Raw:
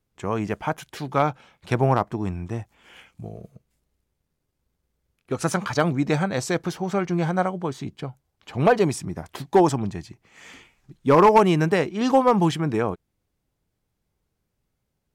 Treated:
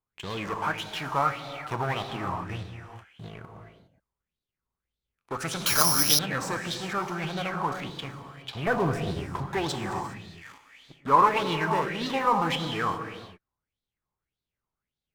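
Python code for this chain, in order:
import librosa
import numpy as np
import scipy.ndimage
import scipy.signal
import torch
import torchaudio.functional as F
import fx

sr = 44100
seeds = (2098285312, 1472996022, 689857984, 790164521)

p1 = fx.tilt_eq(x, sr, slope=-4.0, at=(8.67, 9.47))
p2 = fx.fuzz(p1, sr, gain_db=36.0, gate_db=-41.0)
p3 = p1 + (p2 * librosa.db_to_amplitude(-7.5))
p4 = fx.rev_gated(p3, sr, seeds[0], gate_ms=440, shape='flat', drr_db=3.5)
p5 = fx.resample_bad(p4, sr, factor=8, down='none', up='zero_stuff', at=(5.66, 6.19))
p6 = fx.bell_lfo(p5, sr, hz=1.7, low_hz=960.0, high_hz=3900.0, db=18)
y = p6 * librosa.db_to_amplitude(-17.0)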